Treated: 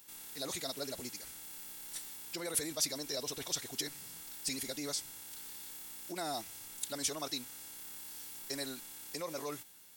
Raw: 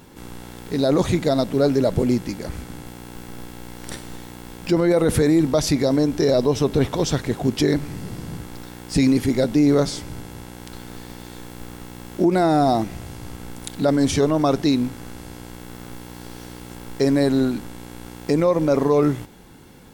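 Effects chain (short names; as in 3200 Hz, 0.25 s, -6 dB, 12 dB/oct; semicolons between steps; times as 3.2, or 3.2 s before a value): pre-emphasis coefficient 0.97; time stretch by phase-locked vocoder 0.5×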